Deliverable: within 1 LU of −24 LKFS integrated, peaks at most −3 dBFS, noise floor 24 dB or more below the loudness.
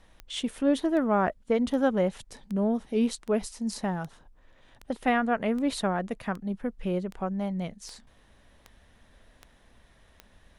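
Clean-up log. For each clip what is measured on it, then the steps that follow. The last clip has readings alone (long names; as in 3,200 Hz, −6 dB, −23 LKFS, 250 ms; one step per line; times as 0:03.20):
number of clicks 14; integrated loudness −28.5 LKFS; sample peak −11.5 dBFS; target loudness −24.0 LKFS
→ click removal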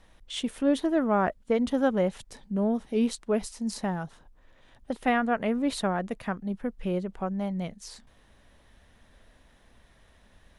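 number of clicks 0; integrated loudness −28.5 LKFS; sample peak −11.5 dBFS; target loudness −24.0 LKFS
→ level +4.5 dB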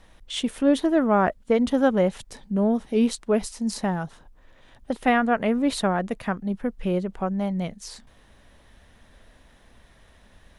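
integrated loudness −24.0 LKFS; sample peak −7.0 dBFS; background noise floor −56 dBFS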